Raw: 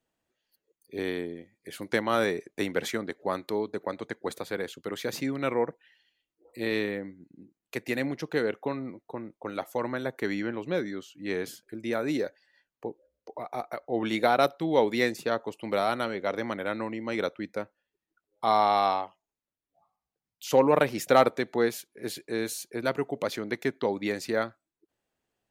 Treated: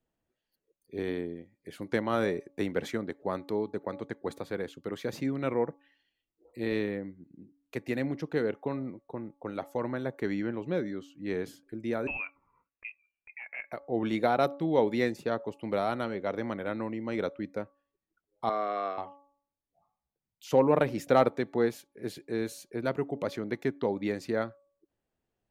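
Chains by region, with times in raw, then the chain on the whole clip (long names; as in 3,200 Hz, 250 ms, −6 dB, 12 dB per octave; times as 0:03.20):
0:12.07–0:13.72: high-pass filter 210 Hz 6 dB per octave + voice inversion scrambler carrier 2,900 Hz
0:18.49–0:18.98: Butterworth band-reject 870 Hz, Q 2 + three-way crossover with the lows and the highs turned down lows −23 dB, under 270 Hz, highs −14 dB, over 2,400 Hz
whole clip: spectral tilt −2 dB per octave; hum removal 282.7 Hz, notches 4; level −4 dB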